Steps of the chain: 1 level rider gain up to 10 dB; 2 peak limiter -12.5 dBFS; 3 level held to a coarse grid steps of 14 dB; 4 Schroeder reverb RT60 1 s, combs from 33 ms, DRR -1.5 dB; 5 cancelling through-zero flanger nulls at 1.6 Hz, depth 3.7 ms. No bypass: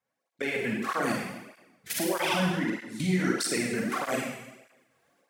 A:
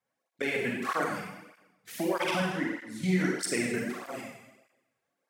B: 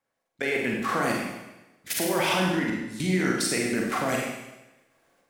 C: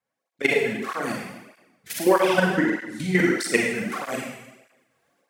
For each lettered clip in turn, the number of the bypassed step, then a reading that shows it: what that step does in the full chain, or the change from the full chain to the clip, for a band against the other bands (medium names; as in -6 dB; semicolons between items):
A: 1, momentary loudness spread change +5 LU; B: 5, loudness change +2.5 LU; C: 2, mean gain reduction 2.0 dB